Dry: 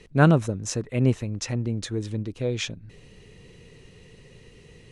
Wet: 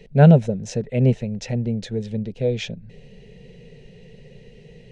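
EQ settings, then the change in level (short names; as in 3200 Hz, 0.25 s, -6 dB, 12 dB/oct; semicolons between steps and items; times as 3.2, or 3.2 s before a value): tape spacing loss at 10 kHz 21 dB; fixed phaser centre 310 Hz, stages 6; +8.0 dB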